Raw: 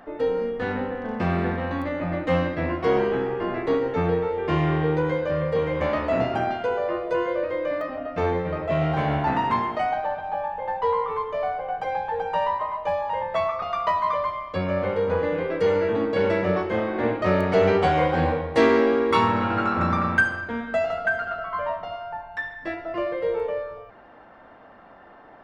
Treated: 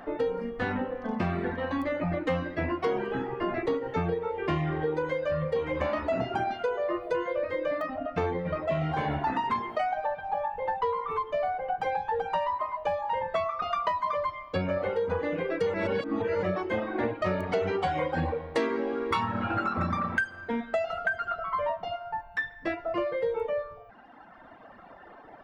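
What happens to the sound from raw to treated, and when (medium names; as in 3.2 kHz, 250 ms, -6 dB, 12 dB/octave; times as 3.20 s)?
15.74–16.43 s: reverse
whole clip: reverb removal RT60 1.8 s; compression 5:1, threshold -28 dBFS; trim +2.5 dB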